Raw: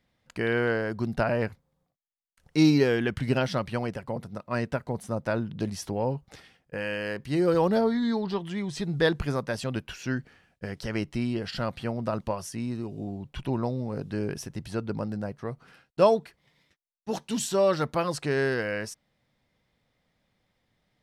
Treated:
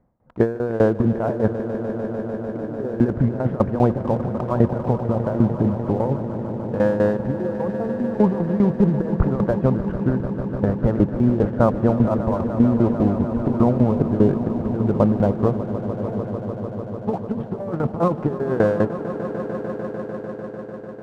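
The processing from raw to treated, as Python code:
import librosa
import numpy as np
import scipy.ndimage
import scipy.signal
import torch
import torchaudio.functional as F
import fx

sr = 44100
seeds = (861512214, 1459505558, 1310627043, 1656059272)

p1 = scipy.signal.sosfilt(scipy.signal.butter(4, 1100.0, 'lowpass', fs=sr, output='sos'), x)
p2 = fx.level_steps(p1, sr, step_db=9)
p3 = p1 + (p2 * librosa.db_to_amplitude(-1.0))
p4 = fx.leveller(p3, sr, passes=1)
p5 = fx.over_compress(p4, sr, threshold_db=-22.0, ratio=-0.5)
p6 = fx.tremolo_shape(p5, sr, shape='saw_down', hz=5.0, depth_pct=90)
p7 = fx.echo_swell(p6, sr, ms=149, loudest=5, wet_db=-14.0)
y = p7 * librosa.db_to_amplitude(7.5)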